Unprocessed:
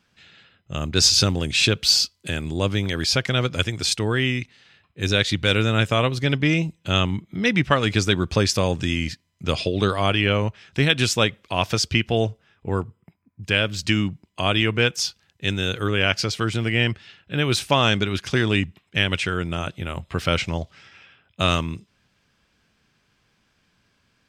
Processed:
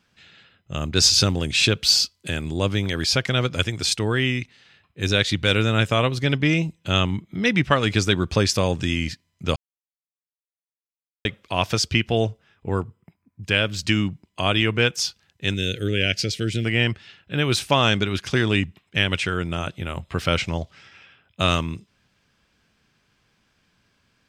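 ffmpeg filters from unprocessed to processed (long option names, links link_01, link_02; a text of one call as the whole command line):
ffmpeg -i in.wav -filter_complex "[0:a]asettb=1/sr,asplit=3[link_01][link_02][link_03];[link_01]atrim=end=15.544[link_04];[link_02]atrim=start=15.54:end=16.65,asetpts=PTS-STARTPTS,afade=type=in:duration=0.004:curve=qsin,afade=type=out:start_time=1.106:duration=0.004:curve=qsin,asuperstop=centerf=1000:order=4:qfactor=0.77[link_05];[link_03]atrim=start=16.646[link_06];[link_04][link_05]acrossfade=duration=0.004:curve1=hsin:curve2=qsin[link_07];[link_07][link_06]acrossfade=duration=0.004:curve1=qsin:curve2=hsin,asplit=3[link_08][link_09][link_10];[link_08]atrim=end=9.56,asetpts=PTS-STARTPTS,afade=type=out:start_time=9.556:duration=0.004:curve=hsin[link_11];[link_09]atrim=start=9.56:end=11.25,asetpts=PTS-STARTPTS,volume=0[link_12];[link_10]atrim=start=11.25,asetpts=PTS-STARTPTS,afade=type=in:duration=0.004:curve=hsin[link_13];[link_11][link_12][link_13]concat=n=3:v=0:a=1" out.wav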